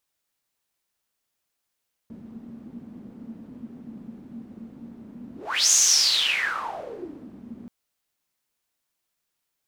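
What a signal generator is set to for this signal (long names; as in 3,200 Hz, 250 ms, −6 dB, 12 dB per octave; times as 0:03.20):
pass-by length 5.58 s, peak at 0:03.61, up 0.39 s, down 1.73 s, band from 230 Hz, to 6,500 Hz, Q 8.9, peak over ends 24 dB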